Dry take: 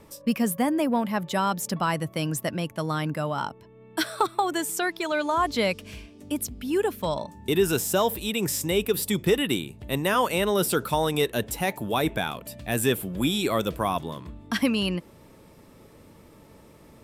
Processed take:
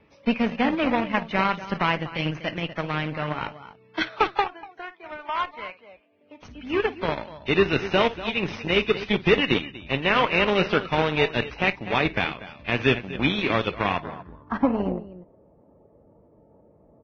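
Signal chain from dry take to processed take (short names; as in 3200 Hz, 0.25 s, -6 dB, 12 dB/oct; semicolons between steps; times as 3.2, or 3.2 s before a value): on a send: loudspeakers at several distances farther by 18 m -12 dB, 83 m -10 dB; 4.44–6.43 on the sum: auto-wah 540–1200 Hz, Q 2.3, up, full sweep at -19 dBFS; added harmonics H 4 -43 dB, 5 -43 dB, 6 -29 dB, 7 -20 dB, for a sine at -9 dBFS; in parallel at -10 dB: decimation with a swept rate 20×, swing 100% 2.4 Hz; on the sum: low-pass sweep 2600 Hz -> 680 Hz, 13.89–14.94; Vorbis 16 kbps 16000 Hz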